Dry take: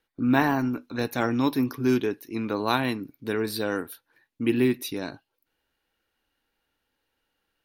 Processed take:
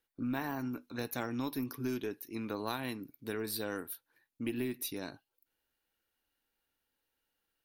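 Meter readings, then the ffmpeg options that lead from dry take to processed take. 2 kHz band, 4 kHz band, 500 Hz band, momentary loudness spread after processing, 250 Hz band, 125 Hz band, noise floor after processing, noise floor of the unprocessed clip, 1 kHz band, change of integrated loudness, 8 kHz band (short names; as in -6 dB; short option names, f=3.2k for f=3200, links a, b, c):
-12.5 dB, -9.5 dB, -12.0 dB, 7 LU, -12.5 dB, -12.0 dB, under -85 dBFS, -80 dBFS, -13.5 dB, -12.0 dB, -3.5 dB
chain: -af "highshelf=f=7.4k:g=11.5,acompressor=threshold=-23dB:ratio=6,aeval=exprs='0.251*(cos(1*acos(clip(val(0)/0.251,-1,1)))-cos(1*PI/2))+0.0251*(cos(2*acos(clip(val(0)/0.251,-1,1)))-cos(2*PI/2))':c=same,volume=-9dB"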